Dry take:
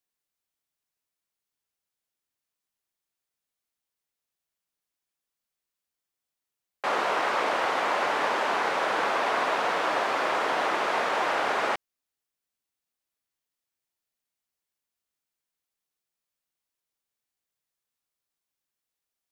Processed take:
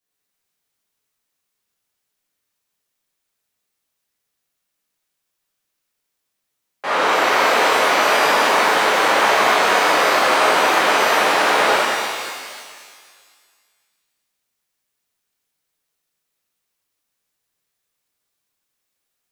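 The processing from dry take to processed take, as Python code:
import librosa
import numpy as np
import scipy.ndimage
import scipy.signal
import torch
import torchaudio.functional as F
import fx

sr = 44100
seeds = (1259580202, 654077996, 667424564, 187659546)

y = fx.rev_shimmer(x, sr, seeds[0], rt60_s=1.9, semitones=12, shimmer_db=-8, drr_db=-10.0)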